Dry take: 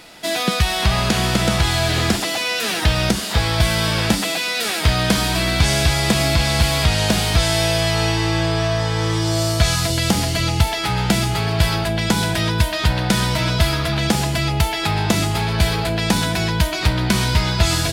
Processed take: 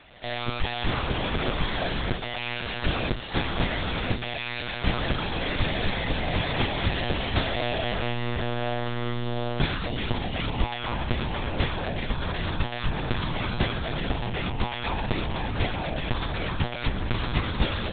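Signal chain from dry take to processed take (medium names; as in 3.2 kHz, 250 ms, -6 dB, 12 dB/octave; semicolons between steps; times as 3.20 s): pre-echo 154 ms -23.5 dB; monotone LPC vocoder at 8 kHz 120 Hz; trim -8.5 dB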